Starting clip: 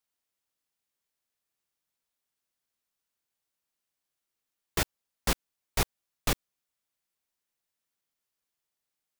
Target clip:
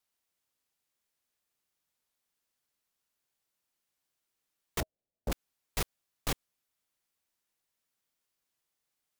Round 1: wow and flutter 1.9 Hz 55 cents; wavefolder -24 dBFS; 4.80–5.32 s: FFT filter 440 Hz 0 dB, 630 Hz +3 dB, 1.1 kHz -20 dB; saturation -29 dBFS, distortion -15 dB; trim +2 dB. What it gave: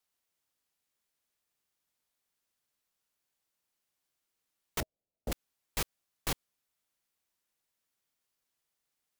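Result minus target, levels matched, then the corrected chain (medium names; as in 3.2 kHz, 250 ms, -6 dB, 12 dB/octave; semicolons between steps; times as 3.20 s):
wavefolder: distortion +17 dB
wow and flutter 1.9 Hz 55 cents; wavefolder -17.5 dBFS; 4.80–5.32 s: FFT filter 440 Hz 0 dB, 630 Hz +3 dB, 1.1 kHz -20 dB; saturation -29 dBFS, distortion -9 dB; trim +2 dB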